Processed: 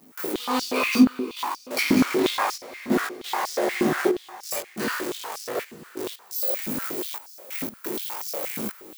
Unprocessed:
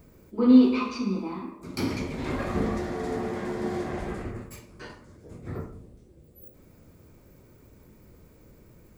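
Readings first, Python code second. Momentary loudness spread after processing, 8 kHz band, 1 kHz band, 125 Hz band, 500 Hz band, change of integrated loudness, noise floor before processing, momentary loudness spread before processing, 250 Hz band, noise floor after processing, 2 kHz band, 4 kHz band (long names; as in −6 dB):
12 LU, +17.0 dB, +8.5 dB, −4.0 dB, +5.0 dB, +1.0 dB, −55 dBFS, 25 LU, 0.0 dB, −50 dBFS, +11.5 dB, +12.5 dB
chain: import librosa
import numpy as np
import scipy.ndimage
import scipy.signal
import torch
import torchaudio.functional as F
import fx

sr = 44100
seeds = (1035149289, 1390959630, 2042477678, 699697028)

p1 = x + 0.5 * 10.0 ** (-32.0 / 20.0) * np.sign(x)
p2 = fx.high_shelf(p1, sr, hz=11000.0, db=10.0)
p3 = fx.quant_companded(p2, sr, bits=4)
p4 = p2 + (p3 * librosa.db_to_amplitude(-11.0))
p5 = fx.step_gate(p4, sr, bpm=88, pattern='.xxxxx..x', floor_db=-24.0, edge_ms=4.5)
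p6 = fx.doubler(p5, sr, ms=19.0, db=-2)
p7 = p6 + fx.echo_diffused(p6, sr, ms=494, feedback_pct=47, wet_db=-16, dry=0)
y = fx.filter_held_highpass(p7, sr, hz=8.4, low_hz=230.0, high_hz=5300.0)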